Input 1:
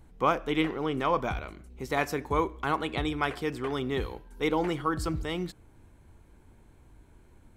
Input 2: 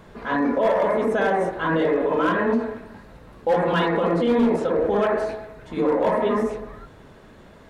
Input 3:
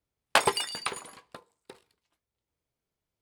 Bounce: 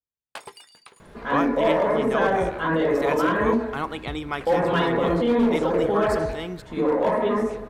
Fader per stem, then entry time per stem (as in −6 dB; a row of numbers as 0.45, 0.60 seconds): −0.5, −1.0, −16.5 decibels; 1.10, 1.00, 0.00 seconds